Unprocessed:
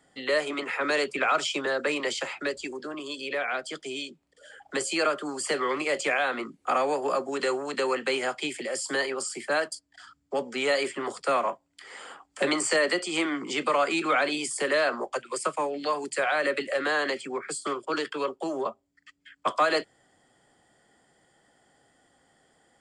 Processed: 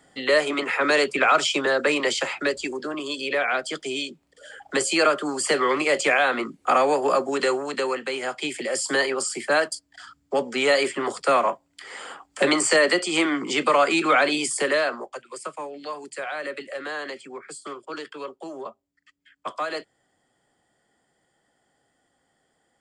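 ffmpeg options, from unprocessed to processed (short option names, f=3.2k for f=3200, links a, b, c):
-af "volume=13.5dB,afade=t=out:st=7.28:d=0.84:silence=0.398107,afade=t=in:st=8.12:d=0.65:silence=0.421697,afade=t=out:st=14.52:d=0.58:silence=0.281838"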